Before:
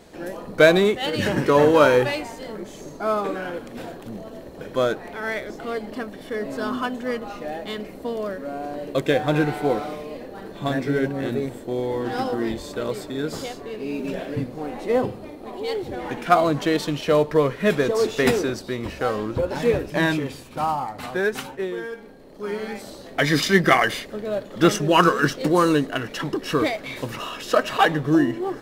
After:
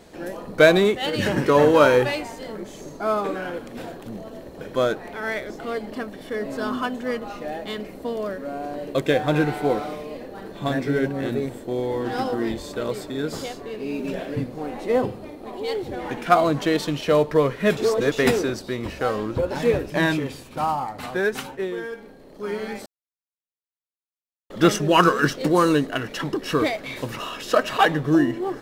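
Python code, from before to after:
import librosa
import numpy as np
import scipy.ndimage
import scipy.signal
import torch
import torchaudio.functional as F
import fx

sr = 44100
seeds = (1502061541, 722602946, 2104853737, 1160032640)

y = fx.edit(x, sr, fx.reverse_span(start_s=17.77, length_s=0.35),
    fx.silence(start_s=22.86, length_s=1.64), tone=tone)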